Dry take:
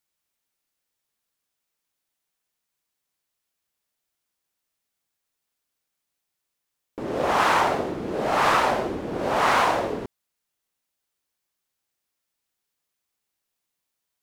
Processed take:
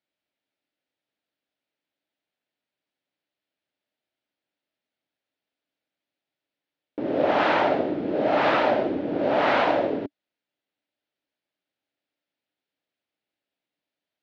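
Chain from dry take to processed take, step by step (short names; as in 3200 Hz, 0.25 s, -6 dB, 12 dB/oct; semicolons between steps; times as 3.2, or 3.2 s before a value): speaker cabinet 110–4000 Hz, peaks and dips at 290 Hz +9 dB, 600 Hz +7 dB, 1100 Hz -8 dB; gain -1 dB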